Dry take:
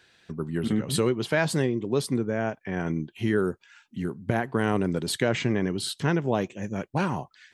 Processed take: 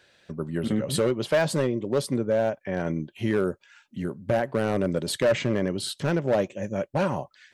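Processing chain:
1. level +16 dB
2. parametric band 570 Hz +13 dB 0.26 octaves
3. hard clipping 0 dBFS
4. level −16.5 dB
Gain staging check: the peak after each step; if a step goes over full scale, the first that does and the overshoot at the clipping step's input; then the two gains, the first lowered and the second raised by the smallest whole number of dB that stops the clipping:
+6.0, +8.5, 0.0, −16.5 dBFS
step 1, 8.5 dB
step 1 +7 dB, step 4 −7.5 dB

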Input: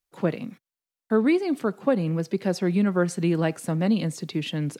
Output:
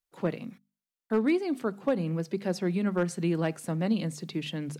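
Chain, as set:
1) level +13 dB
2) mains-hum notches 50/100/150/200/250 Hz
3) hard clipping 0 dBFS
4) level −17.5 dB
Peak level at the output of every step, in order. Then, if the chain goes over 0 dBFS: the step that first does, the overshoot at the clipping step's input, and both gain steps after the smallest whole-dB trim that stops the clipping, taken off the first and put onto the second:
+4.0, +3.5, 0.0, −17.5 dBFS
step 1, 3.5 dB
step 1 +9 dB, step 4 −13.5 dB

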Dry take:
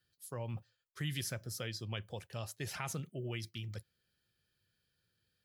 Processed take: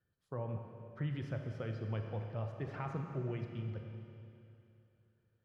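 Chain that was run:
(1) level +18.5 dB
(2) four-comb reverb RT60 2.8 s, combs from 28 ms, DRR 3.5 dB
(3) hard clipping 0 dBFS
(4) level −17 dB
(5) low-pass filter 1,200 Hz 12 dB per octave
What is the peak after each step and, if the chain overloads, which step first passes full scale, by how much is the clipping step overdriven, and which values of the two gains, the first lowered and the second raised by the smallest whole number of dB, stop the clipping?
−5.0, −4.0, −4.0, −21.0, −24.5 dBFS
no step passes full scale

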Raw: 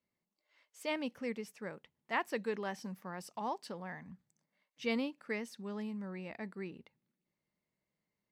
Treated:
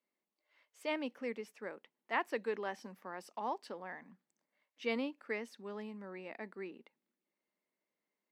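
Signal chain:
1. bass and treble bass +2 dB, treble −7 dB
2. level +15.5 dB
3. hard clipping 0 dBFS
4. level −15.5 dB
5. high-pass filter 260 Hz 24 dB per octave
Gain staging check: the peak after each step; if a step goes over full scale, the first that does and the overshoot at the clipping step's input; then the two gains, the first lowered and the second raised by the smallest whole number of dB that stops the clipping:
−20.5, −5.0, −5.0, −20.5, −20.0 dBFS
no step passes full scale

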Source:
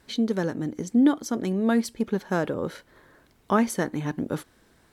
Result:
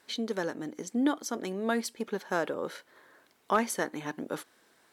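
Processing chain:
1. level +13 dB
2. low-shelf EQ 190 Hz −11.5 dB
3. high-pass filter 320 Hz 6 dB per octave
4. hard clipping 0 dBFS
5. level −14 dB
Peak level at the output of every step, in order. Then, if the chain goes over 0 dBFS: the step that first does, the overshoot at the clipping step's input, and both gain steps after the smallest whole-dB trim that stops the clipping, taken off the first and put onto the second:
+4.0, +4.0, +3.0, 0.0, −14.0 dBFS
step 1, 3.0 dB
step 1 +10 dB, step 5 −11 dB

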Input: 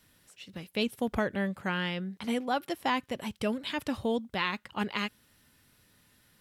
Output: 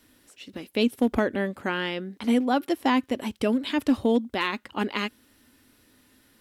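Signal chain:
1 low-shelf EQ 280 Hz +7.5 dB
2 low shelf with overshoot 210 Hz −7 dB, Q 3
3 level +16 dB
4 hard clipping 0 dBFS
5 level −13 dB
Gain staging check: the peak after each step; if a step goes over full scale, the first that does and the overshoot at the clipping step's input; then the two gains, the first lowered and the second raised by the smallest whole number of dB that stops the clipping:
−13.0, −13.0, +3.0, 0.0, −13.0 dBFS
step 3, 3.0 dB
step 3 +13 dB, step 5 −10 dB

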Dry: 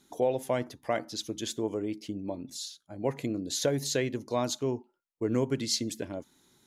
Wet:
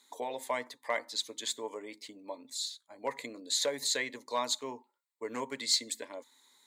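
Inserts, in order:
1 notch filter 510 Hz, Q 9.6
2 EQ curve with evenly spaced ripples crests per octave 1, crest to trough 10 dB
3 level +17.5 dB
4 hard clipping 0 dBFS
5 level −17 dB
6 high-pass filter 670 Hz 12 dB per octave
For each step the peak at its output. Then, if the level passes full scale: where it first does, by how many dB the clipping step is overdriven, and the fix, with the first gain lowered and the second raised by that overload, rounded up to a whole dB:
−15.0, −14.0, +3.5, 0.0, −17.0, −16.0 dBFS
step 3, 3.5 dB
step 3 +13.5 dB, step 5 −13 dB

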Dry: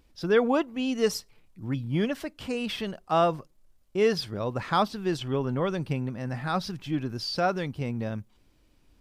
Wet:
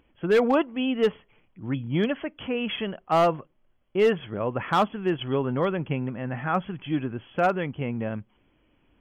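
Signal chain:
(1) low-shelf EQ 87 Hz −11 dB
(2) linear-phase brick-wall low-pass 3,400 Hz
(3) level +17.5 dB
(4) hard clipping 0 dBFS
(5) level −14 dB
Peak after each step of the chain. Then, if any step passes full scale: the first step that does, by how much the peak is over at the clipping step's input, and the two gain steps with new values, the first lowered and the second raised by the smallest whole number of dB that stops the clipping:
−10.5, −10.5, +7.0, 0.0, −14.0 dBFS
step 3, 7.0 dB
step 3 +10.5 dB, step 5 −7 dB

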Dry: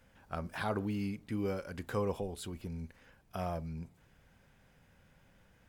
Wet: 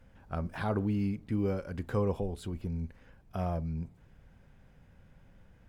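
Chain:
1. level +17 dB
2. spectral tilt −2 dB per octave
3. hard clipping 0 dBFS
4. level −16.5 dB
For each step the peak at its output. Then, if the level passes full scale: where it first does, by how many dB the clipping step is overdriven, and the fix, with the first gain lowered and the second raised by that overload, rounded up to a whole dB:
−5.0, −2.5, −2.5, −19.0 dBFS
no step passes full scale

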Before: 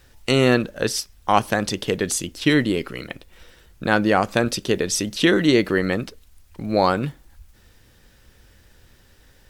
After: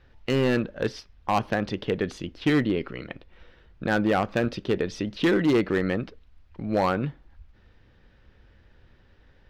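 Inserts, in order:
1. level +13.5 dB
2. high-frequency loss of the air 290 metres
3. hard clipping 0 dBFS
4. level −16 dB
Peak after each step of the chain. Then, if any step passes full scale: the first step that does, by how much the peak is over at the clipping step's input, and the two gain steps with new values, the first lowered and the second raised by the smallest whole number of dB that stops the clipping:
+11.0, +9.5, 0.0, −16.0 dBFS
step 1, 9.5 dB
step 1 +3.5 dB, step 4 −6 dB

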